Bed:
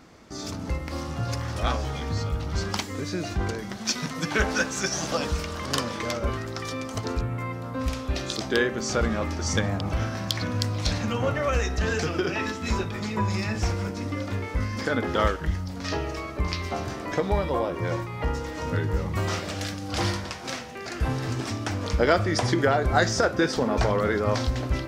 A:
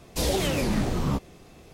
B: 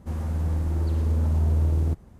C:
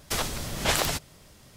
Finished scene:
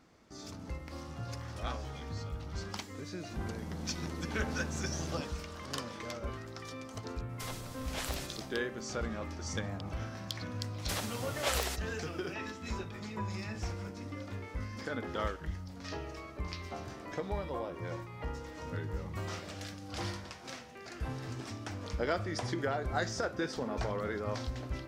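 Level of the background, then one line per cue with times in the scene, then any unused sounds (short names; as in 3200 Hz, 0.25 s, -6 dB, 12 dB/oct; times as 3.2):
bed -12 dB
3.27 add B -9 dB + resonant low shelf 120 Hz -9 dB, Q 1.5
7.29 add C -15 dB + sustainer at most 53 dB/s
10.78 add C -8.5 dB + steep high-pass 330 Hz
not used: A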